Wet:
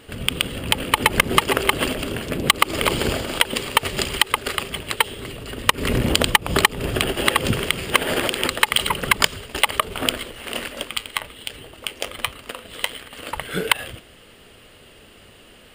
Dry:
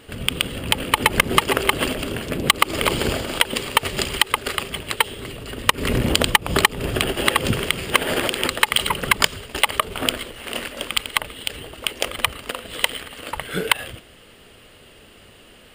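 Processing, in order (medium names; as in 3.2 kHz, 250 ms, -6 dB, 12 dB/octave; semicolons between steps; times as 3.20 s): 10.83–13.13 s: flange 1.3 Hz, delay 7.2 ms, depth 3.9 ms, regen -72%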